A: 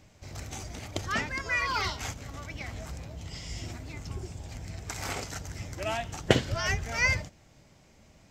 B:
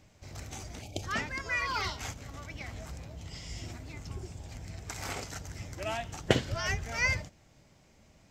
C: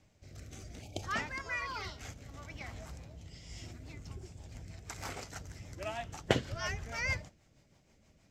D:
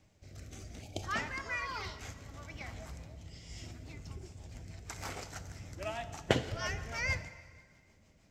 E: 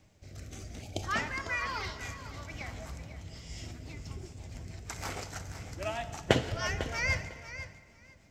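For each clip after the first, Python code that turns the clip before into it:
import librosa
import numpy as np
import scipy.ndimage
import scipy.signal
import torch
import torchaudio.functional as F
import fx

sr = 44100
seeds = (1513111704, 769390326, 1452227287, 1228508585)

y1 = fx.spec_box(x, sr, start_s=0.82, length_s=0.21, low_hz=870.0, high_hz=2200.0, gain_db=-19)
y1 = y1 * librosa.db_to_amplitude(-3.0)
y2 = fx.dynamic_eq(y1, sr, hz=980.0, q=1.0, threshold_db=-49.0, ratio=4.0, max_db=4)
y2 = fx.rotary_switch(y2, sr, hz=0.65, then_hz=6.3, switch_at_s=3.24)
y2 = y2 * librosa.db_to_amplitude(-3.5)
y3 = fx.rev_plate(y2, sr, seeds[0], rt60_s=1.9, hf_ratio=0.8, predelay_ms=0, drr_db=11.5)
y4 = fx.echo_feedback(y3, sr, ms=500, feedback_pct=16, wet_db=-12.5)
y4 = y4 * librosa.db_to_amplitude(3.5)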